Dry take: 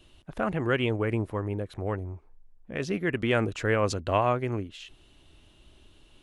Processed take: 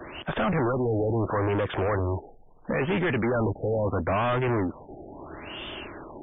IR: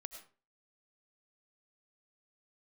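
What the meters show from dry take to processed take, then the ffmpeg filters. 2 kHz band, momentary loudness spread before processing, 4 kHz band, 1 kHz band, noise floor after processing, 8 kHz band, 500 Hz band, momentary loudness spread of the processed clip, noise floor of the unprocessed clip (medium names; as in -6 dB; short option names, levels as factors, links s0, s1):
+0.5 dB, 15 LU, 0.0 dB, +2.0 dB, -50 dBFS, under -35 dB, +2.5 dB, 16 LU, -59 dBFS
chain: -filter_complex "[0:a]acrossover=split=220[s0][s1];[s1]acompressor=threshold=0.0112:ratio=2[s2];[s0][s2]amix=inputs=2:normalize=0,asplit=2[s3][s4];[s4]highpass=f=720:p=1,volume=63.1,asoftclip=type=tanh:threshold=0.133[s5];[s3][s5]amix=inputs=2:normalize=0,lowpass=f=2700:p=1,volume=0.501,afftfilt=real='re*lt(b*sr/1024,820*pow(3700/820,0.5+0.5*sin(2*PI*0.75*pts/sr)))':imag='im*lt(b*sr/1024,820*pow(3700/820,0.5+0.5*sin(2*PI*0.75*pts/sr)))':win_size=1024:overlap=0.75"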